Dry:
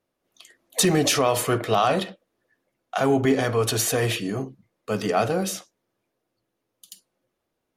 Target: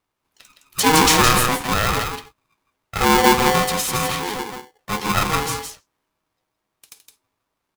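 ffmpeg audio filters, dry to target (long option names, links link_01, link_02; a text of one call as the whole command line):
ffmpeg -i in.wav -filter_complex "[0:a]asettb=1/sr,asplit=3[link_01][link_02][link_03];[link_01]atrim=end=2.984[link_04];[link_02]atrim=start=2.98:end=3.58,asetpts=PTS-STARTPTS,afade=type=in:duration=0.004:curve=qsin,afade=type=out:start_time=0.596:duration=0.004:curve=qsin,lowshelf=frequency=250:gain=12[link_05];[link_03]atrim=start=3.576[link_06];[link_04][link_05]acrossfade=duration=0.004:curve1=hsin:curve2=qsin[link_07];[link_07][link_06]acrossfade=duration=0.004:curve1=qsin:curve2=hsin,asettb=1/sr,asplit=3[link_08][link_09][link_10];[link_08]atrim=end=4.914[link_11];[link_09]atrim=start=4.91:end=5.54,asetpts=PTS-STARTPTS,afade=type=in:duration=0.004:curve=qsin,afade=type=out:start_time=0.626:duration=0.004:curve=qsin,asplit=2[link_12][link_13];[link_13]adelay=12,volume=-3dB[link_14];[link_12][link_14]amix=inputs=2:normalize=0,atrim=end_sample=27783[link_15];[link_10]atrim=start=5.536[link_16];[link_11][link_15]acrossfade=duration=0.004:curve1=hsin:curve2=qsin[link_17];[link_17][link_16]acrossfade=duration=0.004:curve1=qsin:curve2=hsin,aecho=1:1:164:0.531,asettb=1/sr,asplit=3[link_18][link_19][link_20];[link_18]atrim=end=0.864[link_21];[link_19]atrim=start=0.86:end=1.48,asetpts=PTS-STARTPTS,afade=type=in:duration=0.004:curve=qsin,afade=type=out:start_time=0.616:duration=0.004:curve=qsin,acontrast=49[link_22];[link_20]atrim=start=1.476[link_23];[link_21][link_22]acrossfade=duration=0.004:curve1=hsin:curve2=qsin[link_24];[link_24][link_23]acrossfade=duration=0.004:curve1=qsin:curve2=hsin,aeval=exprs='val(0)*sgn(sin(2*PI*630*n/s))':channel_layout=same" out.wav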